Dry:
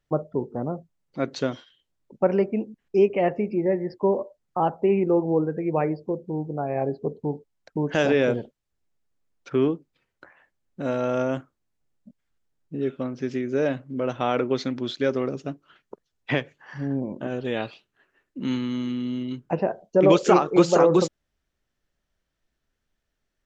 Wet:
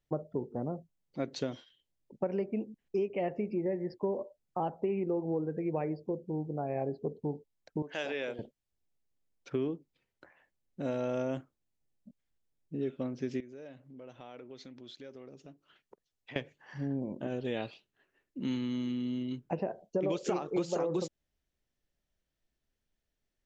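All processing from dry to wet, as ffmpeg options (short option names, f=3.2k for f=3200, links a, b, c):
-filter_complex "[0:a]asettb=1/sr,asplit=3[a][b][c];[a]atrim=end=7.824[d];[b]atrim=start=7.82:end=8.39,asetpts=PTS-STARTPTS,afade=t=in:d=0.004:c=qsin,afade=t=out:st=0.566:d=0.004:c=qsin,highpass=f=1.4k:p=1,equalizer=f=6.1k:t=o:w=1:g=-7.5[e];[c]atrim=start=8.386[f];[d][e]acrossfade=d=0.004:c1=hsin:c2=qsin[g];[g][f]acrossfade=d=0.004:c1=qsin:c2=hsin,asettb=1/sr,asplit=3[h][i][j];[h]atrim=end=13.404[k];[i]atrim=start=13.4:end=16.36,asetpts=PTS-STARTPTS,afade=t=in:d=0.004:c=qsin,afade=t=out:st=2.956:d=0.004:c=qsin,acompressor=threshold=-44dB:ratio=2.5:attack=3.2:release=140:knee=1:detection=peak,lowshelf=f=450:g=-4.5[l];[j]atrim=start=16.356[m];[k][l]acrossfade=d=0.004:c1=hsin:c2=qsin[n];[n][m]acrossfade=d=0.004:c1=qsin:c2=hsin,equalizer=f=1.3k:w=1.6:g=-6,acompressor=threshold=-23dB:ratio=6,volume=-5.5dB"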